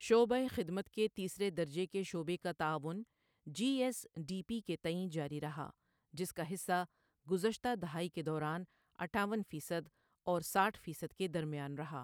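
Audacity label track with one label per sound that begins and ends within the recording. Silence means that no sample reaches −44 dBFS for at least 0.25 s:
3.470000	5.700000	sound
6.140000	6.840000	sound
7.290000	8.630000	sound
8.990000	9.810000	sound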